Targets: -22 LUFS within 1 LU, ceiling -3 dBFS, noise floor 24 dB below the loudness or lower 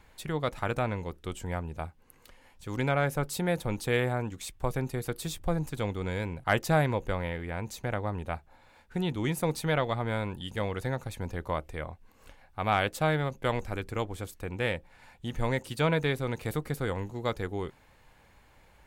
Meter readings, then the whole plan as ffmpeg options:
loudness -32.0 LUFS; peak -12.0 dBFS; loudness target -22.0 LUFS
-> -af "volume=10dB,alimiter=limit=-3dB:level=0:latency=1"

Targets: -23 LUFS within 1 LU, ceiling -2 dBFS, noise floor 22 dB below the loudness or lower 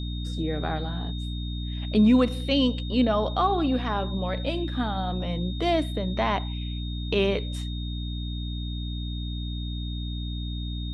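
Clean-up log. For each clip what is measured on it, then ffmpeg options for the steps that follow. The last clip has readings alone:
hum 60 Hz; harmonics up to 300 Hz; hum level -29 dBFS; steady tone 3700 Hz; tone level -40 dBFS; loudness -27.5 LUFS; peak -10.5 dBFS; loudness target -23.0 LUFS
-> -af "bandreject=f=60:t=h:w=6,bandreject=f=120:t=h:w=6,bandreject=f=180:t=h:w=6,bandreject=f=240:t=h:w=6,bandreject=f=300:t=h:w=6"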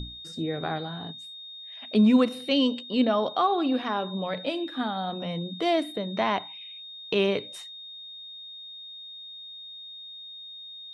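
hum none; steady tone 3700 Hz; tone level -40 dBFS
-> -af "bandreject=f=3.7k:w=30"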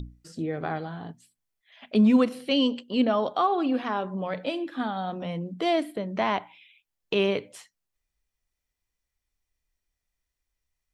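steady tone none; loudness -26.5 LUFS; peak -10.5 dBFS; loudness target -23.0 LUFS
-> -af "volume=3.5dB"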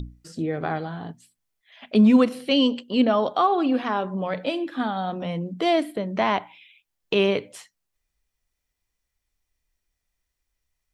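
loudness -23.0 LUFS; peak -7.0 dBFS; noise floor -81 dBFS

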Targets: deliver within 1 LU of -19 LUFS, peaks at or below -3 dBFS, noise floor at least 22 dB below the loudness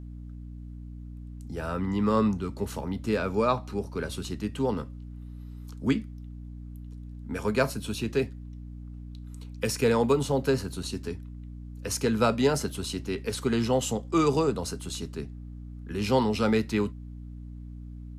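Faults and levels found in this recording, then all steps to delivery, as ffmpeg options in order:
hum 60 Hz; harmonics up to 300 Hz; hum level -38 dBFS; loudness -28.0 LUFS; peak -10.0 dBFS; loudness target -19.0 LUFS
-> -af "bandreject=f=60:t=h:w=6,bandreject=f=120:t=h:w=6,bandreject=f=180:t=h:w=6,bandreject=f=240:t=h:w=6,bandreject=f=300:t=h:w=6"
-af "volume=9dB,alimiter=limit=-3dB:level=0:latency=1"

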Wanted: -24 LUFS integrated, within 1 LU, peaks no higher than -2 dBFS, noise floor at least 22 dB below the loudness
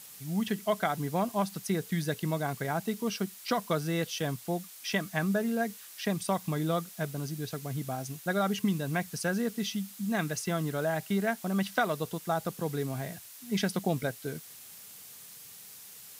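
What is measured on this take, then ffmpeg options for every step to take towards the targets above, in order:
noise floor -49 dBFS; noise floor target -54 dBFS; loudness -32.0 LUFS; peak -15.0 dBFS; loudness target -24.0 LUFS
-> -af "afftdn=nr=6:nf=-49"
-af "volume=8dB"

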